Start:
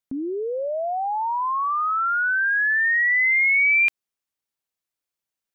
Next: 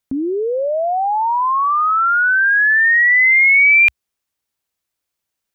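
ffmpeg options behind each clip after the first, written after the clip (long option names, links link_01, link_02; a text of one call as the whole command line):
ffmpeg -i in.wav -af "equalizer=frequency=65:width=1.6:gain=7.5,volume=7.5dB" out.wav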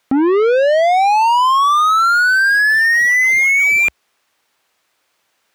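ffmpeg -i in.wav -filter_complex "[0:a]asplit=2[link_01][link_02];[link_02]highpass=frequency=720:poles=1,volume=30dB,asoftclip=type=tanh:threshold=-6.5dB[link_03];[link_01][link_03]amix=inputs=2:normalize=0,lowpass=frequency=1900:poles=1,volume=-6dB" out.wav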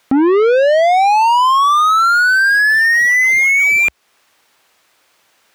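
ffmpeg -i in.wav -af "alimiter=limit=-16.5dB:level=0:latency=1:release=298,volume=8dB" out.wav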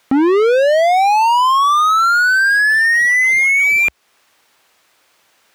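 ffmpeg -i in.wav -af "asoftclip=type=hard:threshold=-10.5dB" out.wav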